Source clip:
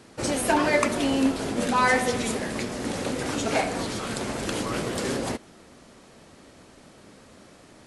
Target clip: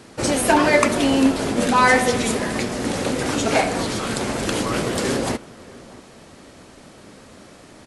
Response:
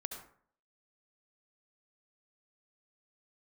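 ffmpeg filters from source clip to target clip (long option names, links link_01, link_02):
-filter_complex "[0:a]asplit=2[link_01][link_02];[link_02]adelay=641.4,volume=-21dB,highshelf=frequency=4000:gain=-14.4[link_03];[link_01][link_03]amix=inputs=2:normalize=0,volume=6dB"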